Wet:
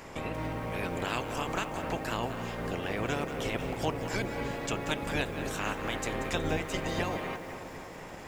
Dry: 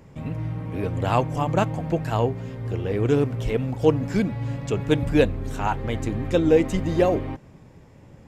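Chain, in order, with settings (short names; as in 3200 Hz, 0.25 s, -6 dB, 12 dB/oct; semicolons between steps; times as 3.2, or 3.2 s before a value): spectral limiter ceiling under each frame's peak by 21 dB; compressor 2.5:1, threshold -38 dBFS, peak gain reduction 17.5 dB; analogue delay 0.252 s, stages 4096, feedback 72%, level -11.5 dB; lo-fi delay 0.184 s, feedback 35%, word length 8-bit, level -11 dB; gain +2 dB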